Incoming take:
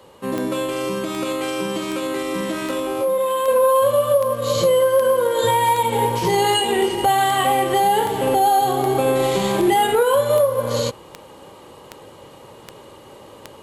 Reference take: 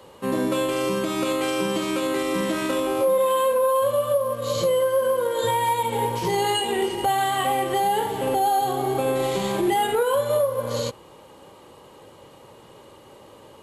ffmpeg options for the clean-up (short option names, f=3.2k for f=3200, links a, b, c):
-af "adeclick=t=4,asetnsamples=n=441:p=0,asendcmd='3.48 volume volume -5dB',volume=0dB"